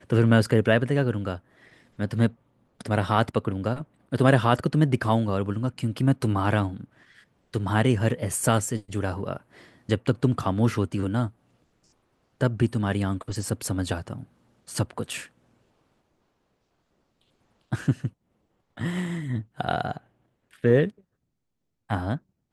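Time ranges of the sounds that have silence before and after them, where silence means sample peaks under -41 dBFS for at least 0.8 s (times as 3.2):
12.41–15.26
17.72–20.9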